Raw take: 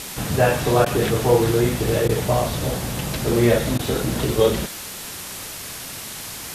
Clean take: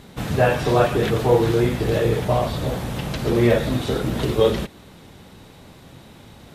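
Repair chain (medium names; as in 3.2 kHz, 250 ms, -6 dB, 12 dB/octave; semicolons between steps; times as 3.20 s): interpolate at 0.85/2.08/3.78 s, 10 ms; noise print and reduce 12 dB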